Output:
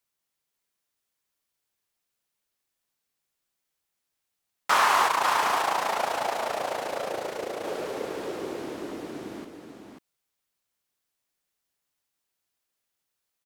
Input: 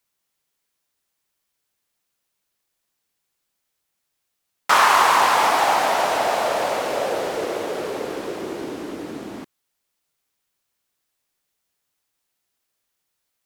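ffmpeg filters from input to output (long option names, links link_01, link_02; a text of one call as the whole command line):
ffmpeg -i in.wav -filter_complex "[0:a]asplit=3[link_01][link_02][link_03];[link_01]afade=type=out:start_time=5.06:duration=0.02[link_04];[link_02]tremolo=f=28:d=0.71,afade=type=in:start_time=5.06:duration=0.02,afade=type=out:start_time=7.63:duration=0.02[link_05];[link_03]afade=type=in:start_time=7.63:duration=0.02[link_06];[link_04][link_05][link_06]amix=inputs=3:normalize=0,aecho=1:1:541:0.473,volume=-6dB" out.wav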